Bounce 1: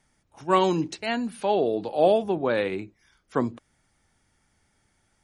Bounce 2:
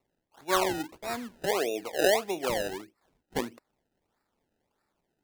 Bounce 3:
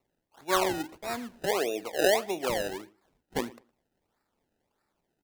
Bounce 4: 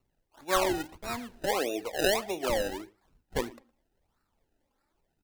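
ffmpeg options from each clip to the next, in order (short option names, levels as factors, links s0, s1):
-filter_complex "[0:a]acrossover=split=270 2600:gain=0.158 1 0.141[s0][s1][s2];[s0][s1][s2]amix=inputs=3:normalize=0,acrusher=samples=27:mix=1:aa=0.000001:lfo=1:lforange=27:lforate=1.6,volume=0.596"
-filter_complex "[0:a]asplit=2[s0][s1];[s1]adelay=112,lowpass=f=3100:p=1,volume=0.0794,asplit=2[s2][s3];[s3]adelay=112,lowpass=f=3100:p=1,volume=0.2[s4];[s0][s2][s4]amix=inputs=3:normalize=0"
-af "lowshelf=f=78:g=11,flanger=delay=0.7:depth=3.1:regen=34:speed=0.95:shape=sinusoidal,volume=1.5"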